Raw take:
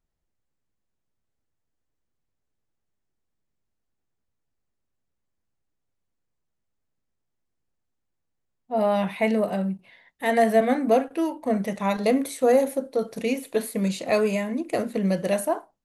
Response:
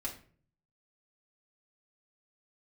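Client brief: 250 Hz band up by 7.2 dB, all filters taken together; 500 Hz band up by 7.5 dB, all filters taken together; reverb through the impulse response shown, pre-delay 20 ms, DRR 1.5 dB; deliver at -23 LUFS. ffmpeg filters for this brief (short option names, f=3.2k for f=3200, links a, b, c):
-filter_complex "[0:a]equalizer=f=250:t=o:g=7,equalizer=f=500:t=o:g=7.5,asplit=2[a][b];[1:a]atrim=start_sample=2205,adelay=20[c];[b][c]afir=irnorm=-1:irlink=0,volume=-2.5dB[d];[a][d]amix=inputs=2:normalize=0,volume=-8dB"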